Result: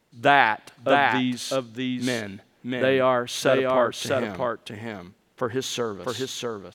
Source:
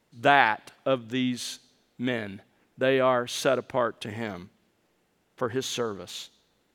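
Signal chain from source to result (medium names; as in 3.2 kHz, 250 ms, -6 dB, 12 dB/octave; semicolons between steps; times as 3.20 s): delay 649 ms -3 dB; trim +2 dB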